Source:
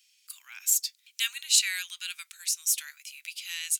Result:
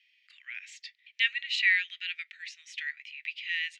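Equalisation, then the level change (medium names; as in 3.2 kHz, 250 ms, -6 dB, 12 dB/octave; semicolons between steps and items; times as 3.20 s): ladder band-pass 2 kHz, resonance 80%; distance through air 88 m; peaking EQ 2.9 kHz +14.5 dB 1.8 oct; 0.0 dB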